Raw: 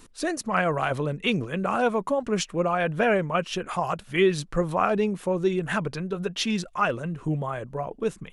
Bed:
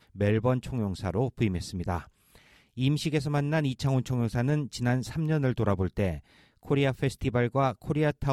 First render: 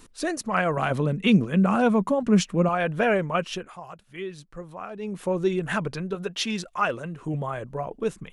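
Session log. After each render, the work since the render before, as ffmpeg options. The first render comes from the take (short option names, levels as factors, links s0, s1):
-filter_complex "[0:a]asettb=1/sr,asplit=3[s0][s1][s2];[s0]atrim=end=0.774[s3];[s1]atrim=start=0.77:end=2.69,asetpts=PTS-STARTPTS,afade=t=in:d=0.004:c=qsin,afade=t=out:st=1.916:d=0.004:c=qsin,equalizer=f=200:t=o:w=0.77:g=11[s4];[s2]atrim=start=2.686[s5];[s3][s4]acrossfade=d=0.004:c1=hsin:c2=qsin[s6];[s6][s5]acrossfade=d=0.004:c1=qsin:c2=hsin,asettb=1/sr,asplit=3[s7][s8][s9];[s7]atrim=end=6.154[s10];[s8]atrim=start=6.15:end=7.34,asetpts=PTS-STARTPTS,afade=t=in:d=0.004:c=qsin,afade=t=out:st=1.186:d=0.004:c=qsin,lowshelf=f=200:g=-7[s11];[s9]atrim=start=7.336[s12];[s10][s11]acrossfade=d=0.004:c1=hsin:c2=qsin[s13];[s13][s12]acrossfade=d=0.004:c1=qsin:c2=hsin,asplit=3[s14][s15][s16];[s14]atrim=end=3.72,asetpts=PTS-STARTPTS,afade=t=out:st=3.49:d=0.23:silence=0.199526[s17];[s15]atrim=start=3.72:end=4.99,asetpts=PTS-STARTPTS,volume=0.2[s18];[s16]atrim=start=4.99,asetpts=PTS-STARTPTS,afade=t=in:d=0.23:silence=0.199526[s19];[s17][s18][s19]concat=n=3:v=0:a=1"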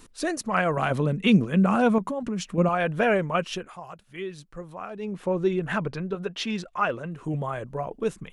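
-filter_complex "[0:a]asettb=1/sr,asplit=3[s0][s1][s2];[s0]atrim=end=1.984[s3];[s1]atrim=start=1.98:end=2.58,asetpts=PTS-STARTPTS,afade=t=in:d=0.004:c=qsin,afade=t=out:st=0.596:d=0.004:c=qsin,acompressor=threshold=0.0501:ratio=6:attack=3.2:release=140:knee=1:detection=peak[s4];[s2]atrim=start=2.576[s5];[s3][s4]acrossfade=d=0.004:c1=hsin:c2=qsin[s6];[s6][s5]acrossfade=d=0.004:c1=qsin:c2=hsin,asettb=1/sr,asplit=3[s7][s8][s9];[s7]atrim=end=5.054[s10];[s8]atrim=start=5.05:end=7.12,asetpts=PTS-STARTPTS,afade=t=in:d=0.004:c=qsin,afade=t=out:st=2.066:d=0.004:c=qsin,aemphasis=mode=reproduction:type=50kf[s11];[s9]atrim=start=7.116[s12];[s10][s11]acrossfade=d=0.004:c1=hsin:c2=qsin[s13];[s13][s12]acrossfade=d=0.004:c1=qsin:c2=hsin"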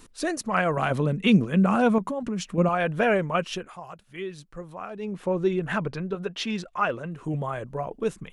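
-af anull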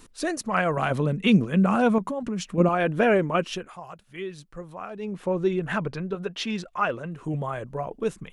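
-filter_complex "[0:a]asettb=1/sr,asplit=3[s0][s1][s2];[s0]atrim=end=2.604[s3];[s1]atrim=start=2.6:end=3.51,asetpts=PTS-STARTPTS,afade=t=in:d=0.004:c=qsin,afade=t=out:st=0.906:d=0.004:c=qsin,equalizer=f=310:t=o:w=0.77:g=8[s4];[s2]atrim=start=3.506[s5];[s3][s4]acrossfade=d=0.004:c1=hsin:c2=qsin[s6];[s6][s5]acrossfade=d=0.004:c1=qsin:c2=hsin"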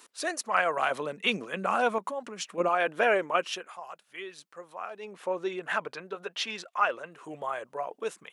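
-af "highpass=590"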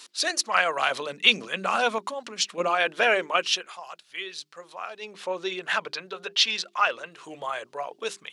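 -af "equalizer=f=4300:w=0.76:g=14.5,bandreject=f=50:t=h:w=6,bandreject=f=100:t=h:w=6,bandreject=f=150:t=h:w=6,bandreject=f=200:t=h:w=6,bandreject=f=250:t=h:w=6,bandreject=f=300:t=h:w=6,bandreject=f=350:t=h:w=6,bandreject=f=400:t=h:w=6"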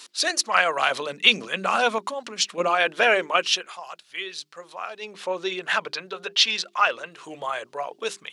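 -af "volume=1.33,alimiter=limit=0.891:level=0:latency=1"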